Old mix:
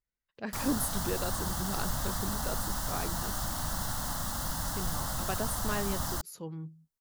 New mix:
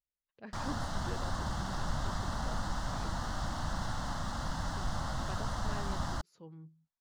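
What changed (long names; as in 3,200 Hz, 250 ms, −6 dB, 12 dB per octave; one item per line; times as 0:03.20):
speech −10.0 dB
master: add high-frequency loss of the air 130 metres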